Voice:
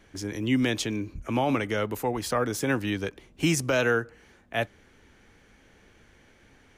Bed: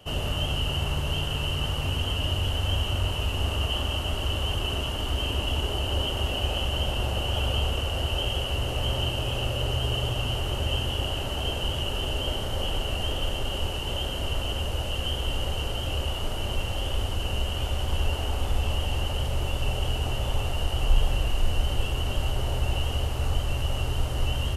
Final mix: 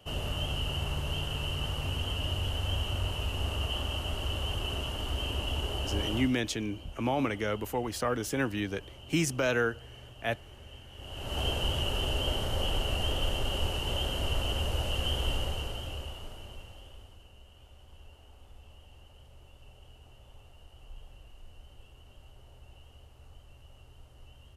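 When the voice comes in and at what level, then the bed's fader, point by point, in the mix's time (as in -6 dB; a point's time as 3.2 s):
5.70 s, -4.0 dB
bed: 6.18 s -5.5 dB
6.41 s -22.5 dB
10.9 s -22.5 dB
11.39 s -2 dB
15.29 s -2 dB
17.33 s -27 dB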